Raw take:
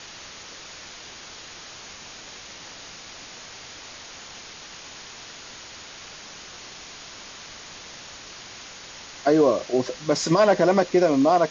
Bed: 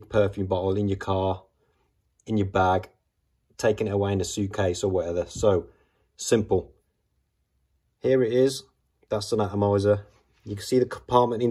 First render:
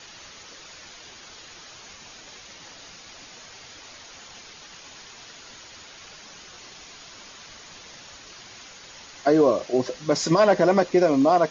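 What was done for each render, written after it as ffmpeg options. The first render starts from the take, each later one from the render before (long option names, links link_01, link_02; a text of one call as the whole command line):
ffmpeg -i in.wav -af "afftdn=noise_reduction=6:noise_floor=-42" out.wav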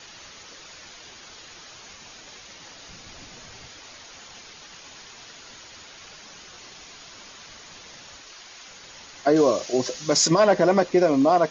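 ffmpeg -i in.wav -filter_complex "[0:a]asettb=1/sr,asplit=3[link_01][link_02][link_03];[link_01]atrim=end=2.894[link_04];[link_02]atrim=start=2.89:end=3.68,asetpts=PTS-STARTPTS,afade=type=in:duration=0.004:curve=qsin,afade=type=out:start_time=0.786:duration=0.004:curve=qsin,lowshelf=frequency=240:gain=10.5[link_05];[link_03]atrim=start=3.676[link_06];[link_04][link_05]acrossfade=duration=0.004:curve1=hsin:curve2=qsin[link_07];[link_07][link_06]acrossfade=duration=0.004:curve1=qsin:curve2=hsin,asettb=1/sr,asplit=3[link_08][link_09][link_10];[link_08]atrim=end=8.214[link_11];[link_09]atrim=start=8.21:end=8.67,asetpts=PTS-STARTPTS,afade=type=in:duration=0.004:curve=qsin,afade=type=out:start_time=0.456:duration=0.004:curve=qsin,equalizer=frequency=120:width_type=o:width=2.6:gain=-11[link_12];[link_10]atrim=start=8.666[link_13];[link_11][link_12]acrossfade=duration=0.004:curve1=hsin:curve2=qsin[link_14];[link_14][link_13]acrossfade=duration=0.004:curve1=qsin:curve2=hsin,asettb=1/sr,asplit=3[link_15][link_16][link_17];[link_15]atrim=end=9.364[link_18];[link_16]atrim=start=9.36:end=10.28,asetpts=PTS-STARTPTS,afade=type=in:duration=0.004:curve=qsin,afade=type=out:start_time=0.916:duration=0.004:curve=qsin,aemphasis=mode=production:type=75fm[link_19];[link_17]atrim=start=10.276[link_20];[link_18][link_19]acrossfade=duration=0.004:curve1=hsin:curve2=qsin[link_21];[link_21][link_20]acrossfade=duration=0.004:curve1=qsin:curve2=hsin" out.wav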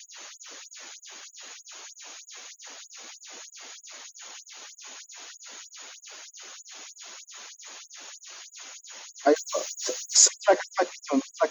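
ffmpeg -i in.wav -af "aexciter=amount=7.1:drive=2.3:freq=7400,afftfilt=real='re*gte(b*sr/1024,210*pow(7200/210,0.5+0.5*sin(2*PI*3.2*pts/sr)))':imag='im*gte(b*sr/1024,210*pow(7200/210,0.5+0.5*sin(2*PI*3.2*pts/sr)))':win_size=1024:overlap=0.75" out.wav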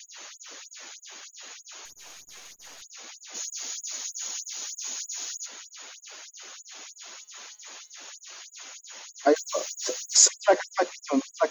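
ffmpeg -i in.wav -filter_complex "[0:a]asettb=1/sr,asplit=3[link_01][link_02][link_03];[link_01]atrim=end=1.854[link_04];[link_02]atrim=start=1.85:end=2.82,asetpts=PTS-STARTPTS,afade=type=in:duration=0.004:curve=qsin,afade=type=out:start_time=0.966:duration=0.004:curve=qsin,aeval=exprs='if(lt(val(0),0),0.447*val(0),val(0))':channel_layout=same[link_05];[link_03]atrim=start=2.816[link_06];[link_04][link_05]acrossfade=duration=0.004:curve1=hsin:curve2=qsin[link_07];[link_07][link_06]acrossfade=duration=0.004:curve1=qsin:curve2=hsin,asplit=3[link_08][link_09][link_10];[link_08]afade=type=out:start_time=3.34:duration=0.02[link_11];[link_09]bass=frequency=250:gain=10,treble=frequency=4000:gain=13,afade=type=in:start_time=3.34:duration=0.02,afade=type=out:start_time=5.45:duration=0.02[link_12];[link_10]afade=type=in:start_time=5.45:duration=0.02[link_13];[link_11][link_12][link_13]amix=inputs=3:normalize=0,asettb=1/sr,asplit=3[link_14][link_15][link_16];[link_14]atrim=end=6.984[link_17];[link_15]atrim=start=6.98:end=8.11,asetpts=PTS-STARTPTS,afade=type=in:duration=0.004:curve=qsin,afade=type=out:start_time=1.126:duration=0.004:curve=qsin,bandreject=frequency=211.8:width_type=h:width=4,bandreject=frequency=423.6:width_type=h:width=4,bandreject=frequency=635.4:width_type=h:width=4,bandreject=frequency=847.2:width_type=h:width=4,bandreject=frequency=1059:width_type=h:width=4,bandreject=frequency=1270.8:width_type=h:width=4,bandreject=frequency=1482.6:width_type=h:width=4,bandreject=frequency=1694.4:width_type=h:width=4,bandreject=frequency=1906.2:width_type=h:width=4,bandreject=frequency=2118:width_type=h:width=4,bandreject=frequency=2329.8:width_type=h:width=4,bandreject=frequency=2541.6:width_type=h:width=4,bandreject=frequency=2753.4:width_type=h:width=4,bandreject=frequency=2965.2:width_type=h:width=4,bandreject=frequency=3177:width_type=h:width=4,bandreject=frequency=3388.8:width_type=h:width=4,bandreject=frequency=3600.6:width_type=h:width=4,bandreject=frequency=3812.4:width_type=h:width=4,bandreject=frequency=4024.2:width_type=h:width=4,bandreject=frequency=4236:width_type=h:width=4,bandreject=frequency=4447.8:width_type=h:width=4,bandreject=frequency=4659.6:width_type=h:width=4,bandreject=frequency=4871.4:width_type=h:width=4,bandreject=frequency=5083.2:width_type=h:width=4,bandreject=frequency=5295:width_type=h:width=4,bandreject=frequency=5506.8:width_type=h:width=4,bandreject=frequency=5718.6:width_type=h:width=4,bandreject=frequency=5930.4:width_type=h:width=4,bandreject=frequency=6142.2:width_type=h:width=4,bandreject=frequency=6354:width_type=h:width=4,bandreject=frequency=6565.8:width_type=h:width=4,bandreject=frequency=6777.6:width_type=h:width=4,bandreject=frequency=6989.4:width_type=h:width=4,bandreject=frequency=7201.2:width_type=h:width=4,bandreject=frequency=7413:width_type=h:width=4,bandreject=frequency=7624.8:width_type=h:width=4,bandreject=frequency=7836.6:width_type=h:width=4,bandreject=frequency=8048.4:width_type=h:width=4,bandreject=frequency=8260.2:width_type=h:width=4[link_18];[link_16]atrim=start=8.106[link_19];[link_17][link_18]acrossfade=duration=0.004:curve1=hsin:curve2=qsin[link_20];[link_20][link_19]acrossfade=duration=0.004:curve1=qsin:curve2=hsin" out.wav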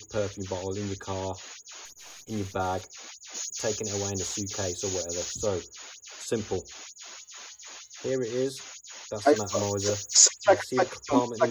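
ffmpeg -i in.wav -i bed.wav -filter_complex "[1:a]volume=-8dB[link_01];[0:a][link_01]amix=inputs=2:normalize=0" out.wav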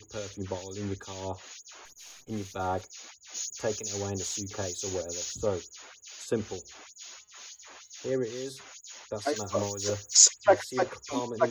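ffmpeg -i in.wav -filter_complex "[0:a]acrossover=split=2300[link_01][link_02];[link_01]aeval=exprs='val(0)*(1-0.7/2+0.7/2*cos(2*PI*2.2*n/s))':channel_layout=same[link_03];[link_02]aeval=exprs='val(0)*(1-0.7/2-0.7/2*cos(2*PI*2.2*n/s))':channel_layout=same[link_04];[link_03][link_04]amix=inputs=2:normalize=0" out.wav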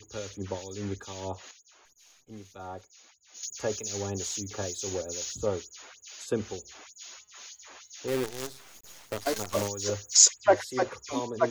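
ffmpeg -i in.wav -filter_complex "[0:a]asplit=3[link_01][link_02][link_03];[link_01]afade=type=out:start_time=8.07:duration=0.02[link_04];[link_02]acrusher=bits=6:dc=4:mix=0:aa=0.000001,afade=type=in:start_time=8.07:duration=0.02,afade=type=out:start_time=9.67:duration=0.02[link_05];[link_03]afade=type=in:start_time=9.67:duration=0.02[link_06];[link_04][link_05][link_06]amix=inputs=3:normalize=0,asplit=3[link_07][link_08][link_09];[link_07]atrim=end=1.512[link_10];[link_08]atrim=start=1.508:end=3.432,asetpts=PTS-STARTPTS,volume=-10dB[link_11];[link_09]atrim=start=3.428[link_12];[link_10][link_11]acrossfade=duration=0.004:curve1=hsin:curve2=hsin[link_13];[link_13][link_12]acrossfade=duration=0.004:curve1=hsin:curve2=hsin" out.wav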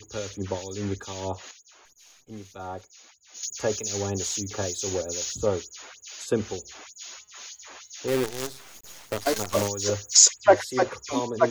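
ffmpeg -i in.wav -af "volume=4.5dB,alimiter=limit=-3dB:level=0:latency=1" out.wav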